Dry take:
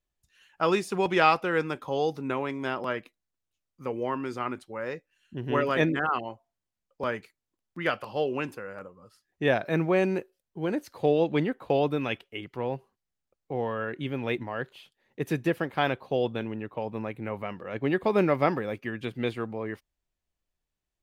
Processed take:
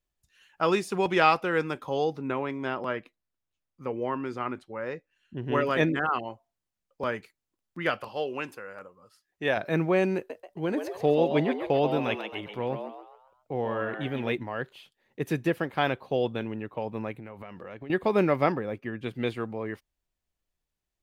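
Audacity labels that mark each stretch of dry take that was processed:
2.040000	5.520000	treble shelf 5.6 kHz -11.5 dB
8.080000	9.570000	bass shelf 370 Hz -9 dB
10.160000	14.330000	frequency-shifting echo 135 ms, feedback 41%, per repeat +99 Hz, level -7 dB
17.140000	17.900000	compression 12:1, threshold -37 dBFS
18.520000	19.060000	treble shelf 2.1 kHz -9 dB

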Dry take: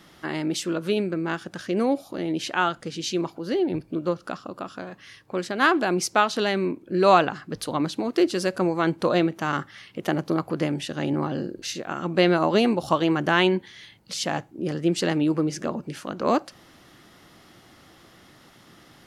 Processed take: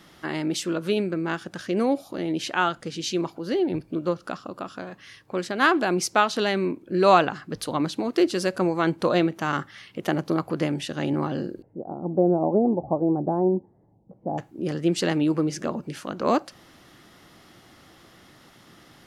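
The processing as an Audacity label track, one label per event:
11.620000	14.380000	elliptic low-pass 810 Hz, stop band 80 dB

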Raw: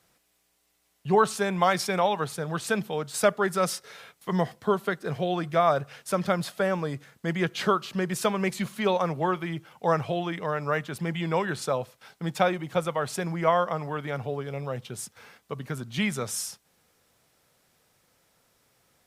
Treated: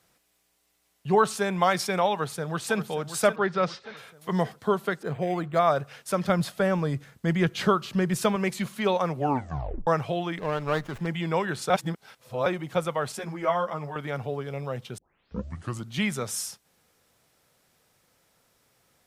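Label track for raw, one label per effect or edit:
2.110000	2.770000	echo throw 580 ms, feedback 50%, level -11 dB
3.360000	3.970000	low-pass 4.4 kHz 24 dB/octave
5.030000	5.590000	decimation joined by straight lines rate divided by 8×
6.290000	8.360000	bass shelf 150 Hz +11.5 dB
9.150000	9.150000	tape stop 0.72 s
10.380000	11.070000	sliding maximum over 9 samples
11.700000	12.460000	reverse
13.120000	13.960000	three-phase chorus
14.980000	14.980000	tape start 0.91 s

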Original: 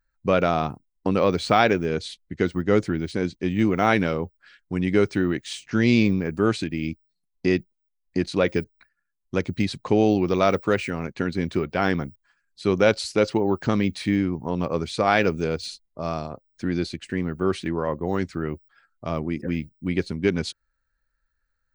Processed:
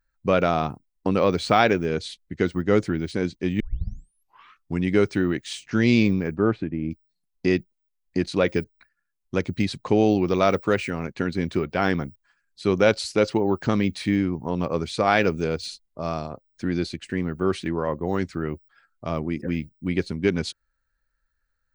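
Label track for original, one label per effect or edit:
3.600000	3.600000	tape start 1.21 s
6.340000	6.900000	low-pass 1.7 kHz -> 1 kHz

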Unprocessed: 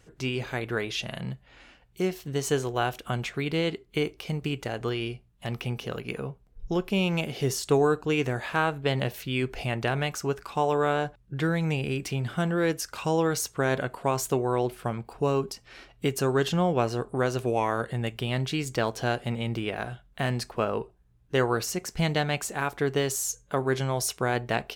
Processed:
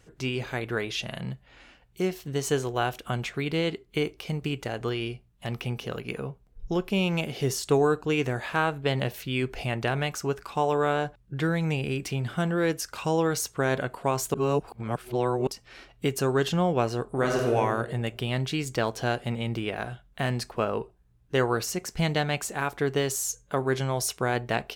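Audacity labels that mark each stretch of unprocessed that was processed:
14.340000	15.470000	reverse
17.070000	17.550000	reverb throw, RT60 1.2 s, DRR -0.5 dB

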